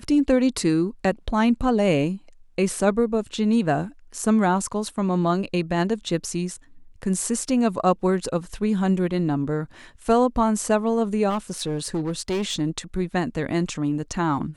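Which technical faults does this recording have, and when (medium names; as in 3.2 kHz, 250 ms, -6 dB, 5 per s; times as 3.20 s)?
11.29–12.61 s: clipped -21 dBFS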